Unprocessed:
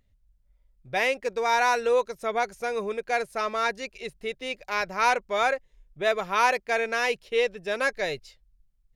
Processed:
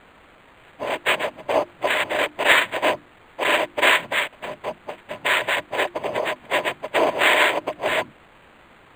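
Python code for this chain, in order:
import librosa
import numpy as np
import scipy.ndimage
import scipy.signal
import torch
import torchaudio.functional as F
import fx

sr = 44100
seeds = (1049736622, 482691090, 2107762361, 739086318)

y = x[::-1].copy()
y = fx.high_shelf_res(y, sr, hz=2000.0, db=-7.5, q=1.5)
y = fx.noise_vocoder(y, sr, seeds[0], bands=4)
y = fx.band_shelf(y, sr, hz=2600.0, db=11.5, octaves=1.7)
y = fx.hum_notches(y, sr, base_hz=50, count=7)
y = fx.small_body(y, sr, hz=(610.0, 1000.0), ring_ms=45, db=11)
y = fx.quant_dither(y, sr, seeds[1], bits=8, dither='triangular')
y = np.interp(np.arange(len(y)), np.arange(len(y))[::8], y[::8])
y = y * 10.0 ** (-1.0 / 20.0)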